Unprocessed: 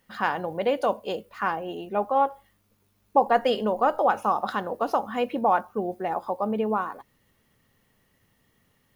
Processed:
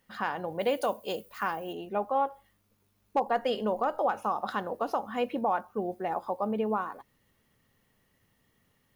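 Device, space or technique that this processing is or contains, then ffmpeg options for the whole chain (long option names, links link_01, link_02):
clipper into limiter: -filter_complex "[0:a]asettb=1/sr,asplit=3[link_01][link_02][link_03];[link_01]atrim=end=0.594[link_04];[link_02]atrim=start=0.59:end=1.73,asetpts=PTS-STARTPTS,afade=type=in:duration=0.004:curve=qsin,afade=type=out:start_time=1.136:duration=0.004:curve=qsin,aemphasis=mode=production:type=50kf[link_05];[link_03]atrim=start=1.726[link_06];[link_04][link_05]acrossfade=duration=0.004:curve1=hsin:curve2=qsin[link_07];[link_07][link_06]acrossfade=duration=0.004:curve1=qsin:curve2=hsin,asoftclip=type=hard:threshold=-10.5dB,alimiter=limit=-14.5dB:level=0:latency=1:release=258,volume=-3.5dB"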